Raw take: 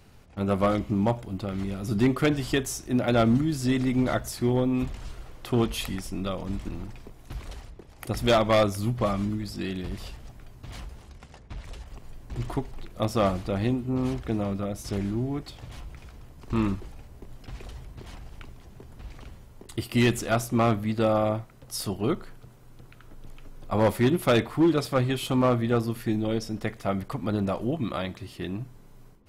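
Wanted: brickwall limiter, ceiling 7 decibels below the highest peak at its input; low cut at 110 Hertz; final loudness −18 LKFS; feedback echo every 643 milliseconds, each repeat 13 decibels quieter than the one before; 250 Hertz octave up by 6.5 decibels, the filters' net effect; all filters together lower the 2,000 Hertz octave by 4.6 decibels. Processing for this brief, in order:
high-pass filter 110 Hz
parametric band 250 Hz +8 dB
parametric band 2,000 Hz −6 dB
brickwall limiter −13.5 dBFS
repeating echo 643 ms, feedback 22%, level −13 dB
level +7 dB

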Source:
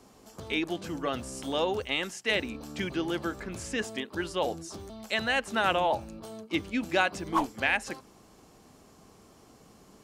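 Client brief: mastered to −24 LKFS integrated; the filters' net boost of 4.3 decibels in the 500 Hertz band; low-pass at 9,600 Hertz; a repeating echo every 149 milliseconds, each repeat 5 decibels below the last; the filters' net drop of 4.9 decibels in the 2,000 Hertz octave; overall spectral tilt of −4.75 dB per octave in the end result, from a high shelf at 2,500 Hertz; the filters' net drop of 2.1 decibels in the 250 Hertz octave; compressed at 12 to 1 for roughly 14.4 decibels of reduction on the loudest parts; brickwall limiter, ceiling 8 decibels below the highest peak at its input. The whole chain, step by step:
low-pass filter 9,600 Hz
parametric band 250 Hz −6.5 dB
parametric band 500 Hz +7.5 dB
parametric band 2,000 Hz −4 dB
high-shelf EQ 2,500 Hz −6 dB
downward compressor 12 to 1, threshold −34 dBFS
brickwall limiter −31.5 dBFS
repeating echo 149 ms, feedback 56%, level −5 dB
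level +16.5 dB

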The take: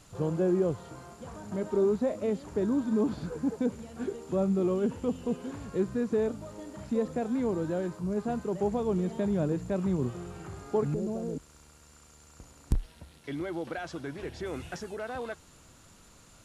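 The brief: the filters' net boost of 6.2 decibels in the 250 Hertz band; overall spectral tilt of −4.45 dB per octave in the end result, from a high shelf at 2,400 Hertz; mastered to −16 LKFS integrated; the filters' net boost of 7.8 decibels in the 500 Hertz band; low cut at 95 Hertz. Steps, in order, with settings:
high-pass filter 95 Hz
parametric band 250 Hz +6 dB
parametric band 500 Hz +7.5 dB
high-shelf EQ 2,400 Hz +5 dB
level +8.5 dB

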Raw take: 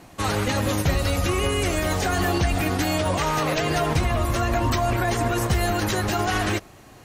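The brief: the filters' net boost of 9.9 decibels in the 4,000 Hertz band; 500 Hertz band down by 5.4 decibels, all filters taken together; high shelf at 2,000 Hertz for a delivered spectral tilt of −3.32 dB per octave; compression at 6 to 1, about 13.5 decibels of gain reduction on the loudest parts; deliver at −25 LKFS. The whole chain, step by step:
parametric band 500 Hz −9 dB
high-shelf EQ 2,000 Hz +8.5 dB
parametric band 4,000 Hz +4.5 dB
downward compressor 6 to 1, threshold −31 dBFS
level +7 dB

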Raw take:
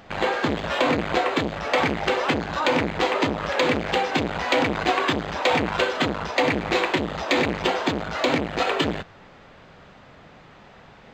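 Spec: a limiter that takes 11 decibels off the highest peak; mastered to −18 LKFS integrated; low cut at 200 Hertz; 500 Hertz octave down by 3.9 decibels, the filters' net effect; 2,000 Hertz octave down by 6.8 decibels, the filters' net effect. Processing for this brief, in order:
high-pass filter 200 Hz
parametric band 500 Hz −4 dB
parametric band 2,000 Hz −8.5 dB
level +13 dB
brickwall limiter −8 dBFS

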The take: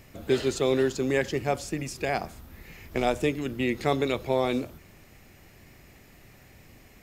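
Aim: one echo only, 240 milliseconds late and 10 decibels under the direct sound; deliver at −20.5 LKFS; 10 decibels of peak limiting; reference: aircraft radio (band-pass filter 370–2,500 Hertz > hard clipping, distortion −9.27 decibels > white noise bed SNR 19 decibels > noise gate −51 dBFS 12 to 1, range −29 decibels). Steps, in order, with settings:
brickwall limiter −19.5 dBFS
band-pass filter 370–2,500 Hz
single-tap delay 240 ms −10 dB
hard clipping −31.5 dBFS
white noise bed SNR 19 dB
noise gate −51 dBFS 12 to 1, range −29 dB
level +17 dB

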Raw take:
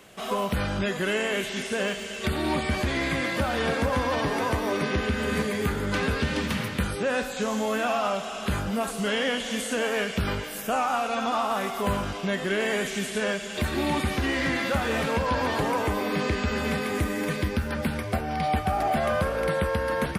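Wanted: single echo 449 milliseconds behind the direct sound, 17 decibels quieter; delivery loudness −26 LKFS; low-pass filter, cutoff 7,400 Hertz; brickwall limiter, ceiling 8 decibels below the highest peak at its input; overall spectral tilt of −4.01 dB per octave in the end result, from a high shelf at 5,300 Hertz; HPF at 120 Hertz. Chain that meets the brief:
high-pass filter 120 Hz
low-pass filter 7,400 Hz
high-shelf EQ 5,300 Hz +6 dB
brickwall limiter −20.5 dBFS
single-tap delay 449 ms −17 dB
level +3.5 dB

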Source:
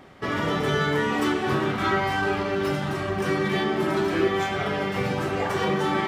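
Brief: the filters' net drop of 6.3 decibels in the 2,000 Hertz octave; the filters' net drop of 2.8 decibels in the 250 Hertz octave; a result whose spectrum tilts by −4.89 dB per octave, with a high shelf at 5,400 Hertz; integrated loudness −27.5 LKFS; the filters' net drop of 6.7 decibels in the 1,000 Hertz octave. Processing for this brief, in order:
parametric band 250 Hz −3.5 dB
parametric band 1,000 Hz −7.5 dB
parametric band 2,000 Hz −4.5 dB
high-shelf EQ 5,400 Hz −5.5 dB
level +1 dB

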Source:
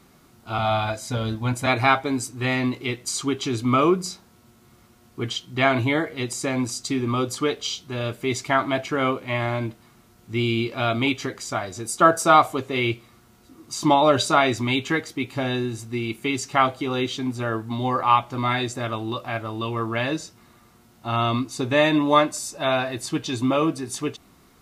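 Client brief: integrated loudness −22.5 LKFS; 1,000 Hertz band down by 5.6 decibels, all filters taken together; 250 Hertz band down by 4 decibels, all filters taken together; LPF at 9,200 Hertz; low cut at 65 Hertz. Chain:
high-pass filter 65 Hz
low-pass filter 9,200 Hz
parametric band 250 Hz −4.5 dB
parametric band 1,000 Hz −7.5 dB
level +4 dB

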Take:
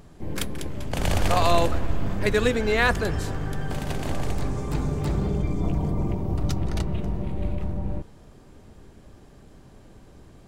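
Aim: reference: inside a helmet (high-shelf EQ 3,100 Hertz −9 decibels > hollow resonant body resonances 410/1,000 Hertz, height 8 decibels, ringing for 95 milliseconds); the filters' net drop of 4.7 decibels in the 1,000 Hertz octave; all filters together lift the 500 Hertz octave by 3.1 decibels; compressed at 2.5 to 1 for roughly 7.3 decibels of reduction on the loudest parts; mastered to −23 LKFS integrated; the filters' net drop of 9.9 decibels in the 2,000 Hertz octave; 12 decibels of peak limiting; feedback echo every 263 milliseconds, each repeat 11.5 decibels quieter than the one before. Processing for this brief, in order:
parametric band 500 Hz +6.5 dB
parametric band 1,000 Hz −8.5 dB
parametric band 2,000 Hz −7 dB
downward compressor 2.5 to 1, threshold −25 dBFS
brickwall limiter −25.5 dBFS
high-shelf EQ 3,100 Hz −9 dB
repeating echo 263 ms, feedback 27%, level −11.5 dB
hollow resonant body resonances 410/1,000 Hz, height 8 dB, ringing for 95 ms
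level +11.5 dB

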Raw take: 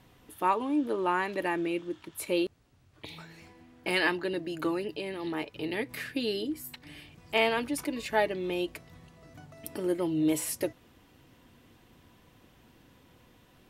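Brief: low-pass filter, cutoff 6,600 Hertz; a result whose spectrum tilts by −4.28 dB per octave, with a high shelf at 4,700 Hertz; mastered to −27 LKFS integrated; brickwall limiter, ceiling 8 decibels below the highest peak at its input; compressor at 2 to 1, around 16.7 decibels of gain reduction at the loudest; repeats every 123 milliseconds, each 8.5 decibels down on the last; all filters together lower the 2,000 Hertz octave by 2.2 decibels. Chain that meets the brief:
low-pass filter 6,600 Hz
parametric band 2,000 Hz −4 dB
high-shelf EQ 4,700 Hz +7 dB
downward compressor 2 to 1, threshold −54 dBFS
brickwall limiter −36 dBFS
repeating echo 123 ms, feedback 38%, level −8.5 dB
level +20.5 dB

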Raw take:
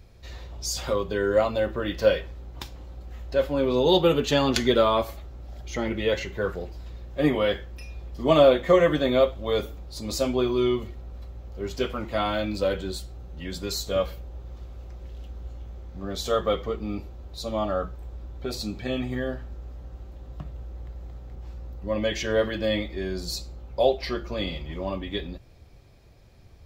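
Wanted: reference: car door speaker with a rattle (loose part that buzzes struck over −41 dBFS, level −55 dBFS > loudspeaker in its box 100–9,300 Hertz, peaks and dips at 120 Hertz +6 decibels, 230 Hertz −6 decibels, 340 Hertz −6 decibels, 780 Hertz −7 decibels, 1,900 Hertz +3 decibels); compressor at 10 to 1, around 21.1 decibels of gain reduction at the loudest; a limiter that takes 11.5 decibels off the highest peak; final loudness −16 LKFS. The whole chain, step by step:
downward compressor 10 to 1, threshold −35 dBFS
brickwall limiter −32.5 dBFS
loose part that buzzes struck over −41 dBFS, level −55 dBFS
loudspeaker in its box 100–9,300 Hz, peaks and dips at 120 Hz +6 dB, 230 Hz −6 dB, 340 Hz −6 dB, 780 Hz −7 dB, 1,900 Hz +3 dB
level +29 dB

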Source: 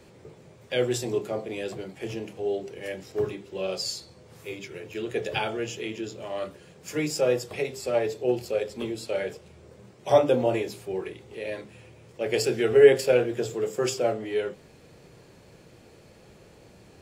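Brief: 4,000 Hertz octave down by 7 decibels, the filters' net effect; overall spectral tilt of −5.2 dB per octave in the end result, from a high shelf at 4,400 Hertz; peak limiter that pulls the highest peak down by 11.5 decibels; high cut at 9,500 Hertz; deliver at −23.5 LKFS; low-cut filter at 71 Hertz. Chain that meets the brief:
high-pass filter 71 Hz
low-pass filter 9,500 Hz
parametric band 4,000 Hz −4.5 dB
high-shelf EQ 4,400 Hz −8.5 dB
level +6.5 dB
brickwall limiter −9.5 dBFS

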